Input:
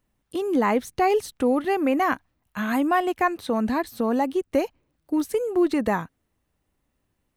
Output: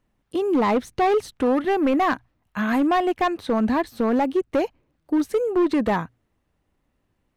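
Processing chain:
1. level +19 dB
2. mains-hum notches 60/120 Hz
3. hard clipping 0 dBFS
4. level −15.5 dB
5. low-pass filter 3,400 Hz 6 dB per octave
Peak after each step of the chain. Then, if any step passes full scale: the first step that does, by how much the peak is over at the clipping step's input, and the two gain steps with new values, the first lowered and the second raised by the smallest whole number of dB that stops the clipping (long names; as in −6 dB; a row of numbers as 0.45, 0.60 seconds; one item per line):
+9.0, +9.0, 0.0, −15.5, −15.5 dBFS
step 1, 9.0 dB
step 1 +10 dB, step 4 −6.5 dB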